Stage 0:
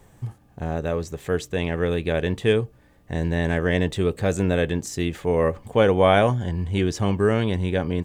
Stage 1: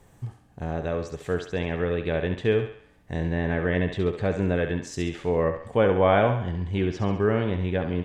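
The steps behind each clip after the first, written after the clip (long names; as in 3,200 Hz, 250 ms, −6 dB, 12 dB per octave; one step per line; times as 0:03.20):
treble cut that deepens with the level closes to 2,500 Hz, closed at −18 dBFS
feedback echo with a high-pass in the loop 68 ms, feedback 50%, high-pass 430 Hz, level −7 dB
level −3 dB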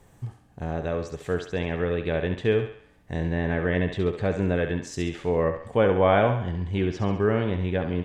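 no processing that can be heard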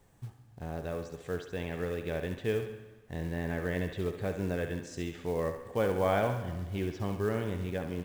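log-companded quantiser 6 bits
dense smooth reverb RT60 1.4 s, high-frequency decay 0.75×, pre-delay 115 ms, DRR 14.5 dB
level −8.5 dB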